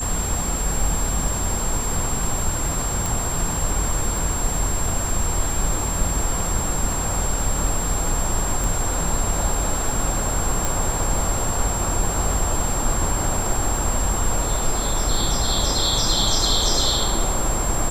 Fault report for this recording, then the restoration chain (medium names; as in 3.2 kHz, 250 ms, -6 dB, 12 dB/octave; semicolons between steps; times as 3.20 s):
crackle 24 per s -28 dBFS
whine 7.5 kHz -26 dBFS
3.06 s: pop
8.64 s: pop
10.65 s: pop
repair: de-click; band-stop 7.5 kHz, Q 30